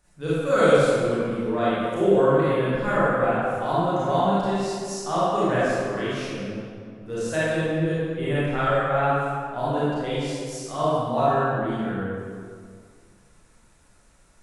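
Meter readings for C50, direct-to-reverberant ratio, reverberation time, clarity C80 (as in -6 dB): -6.0 dB, -11.0 dB, 2.0 s, -2.5 dB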